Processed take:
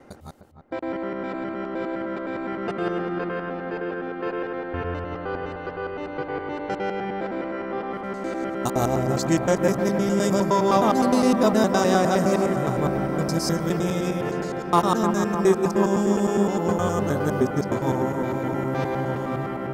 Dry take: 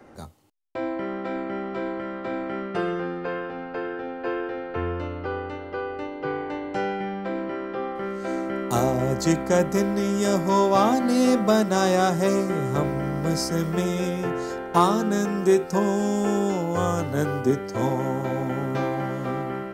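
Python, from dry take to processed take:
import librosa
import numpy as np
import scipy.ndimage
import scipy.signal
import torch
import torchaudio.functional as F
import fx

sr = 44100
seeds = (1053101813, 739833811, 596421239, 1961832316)

y = fx.local_reverse(x, sr, ms=103.0)
y = fx.echo_wet_lowpass(y, sr, ms=303, feedback_pct=71, hz=2000.0, wet_db=-8)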